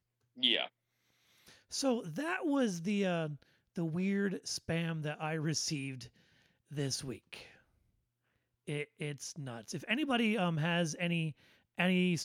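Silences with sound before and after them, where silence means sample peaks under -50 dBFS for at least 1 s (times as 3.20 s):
7.51–8.67 s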